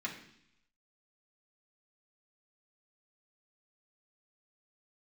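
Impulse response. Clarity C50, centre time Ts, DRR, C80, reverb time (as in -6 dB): 8.0 dB, 21 ms, -4.0 dB, 11.0 dB, 0.70 s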